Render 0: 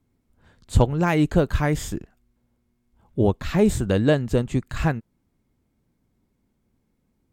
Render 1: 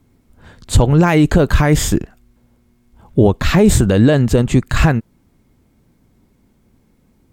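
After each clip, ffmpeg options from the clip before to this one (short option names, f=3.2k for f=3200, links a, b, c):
-af "alimiter=level_in=15dB:limit=-1dB:release=50:level=0:latency=1,volume=-1dB"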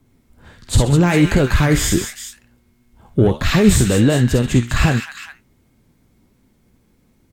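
-filter_complex "[0:a]flanger=delay=7.6:depth=9.4:regen=71:speed=1.4:shape=sinusoidal,acrossover=split=440|1300[a][b][c];[b]asoftclip=type=tanh:threshold=-22.5dB[d];[c]aecho=1:1:50|62|130|204|406:0.668|0.473|0.2|0.501|0.355[e];[a][d][e]amix=inputs=3:normalize=0,volume=2.5dB"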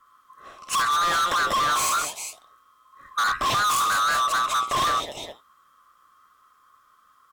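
-af "afftfilt=real='real(if(lt(b,960),b+48*(1-2*mod(floor(b/48),2)),b),0)':imag='imag(if(lt(b,960),b+48*(1-2*mod(floor(b/48),2)),b),0)':win_size=2048:overlap=0.75,asoftclip=type=hard:threshold=-19dB,volume=-1.5dB"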